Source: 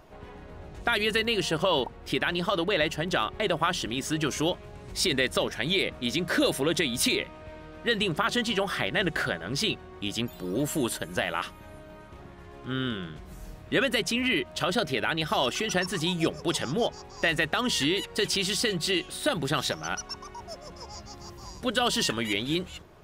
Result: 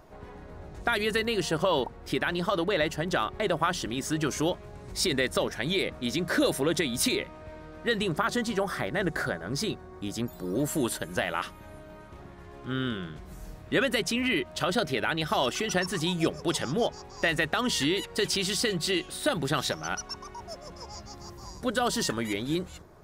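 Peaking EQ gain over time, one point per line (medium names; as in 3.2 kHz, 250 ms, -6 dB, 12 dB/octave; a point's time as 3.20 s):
peaking EQ 2.9 kHz 0.72 oct
7.99 s -6 dB
8.57 s -14 dB
10.30 s -14 dB
10.89 s -3 dB
20.97 s -3 dB
21.92 s -11 dB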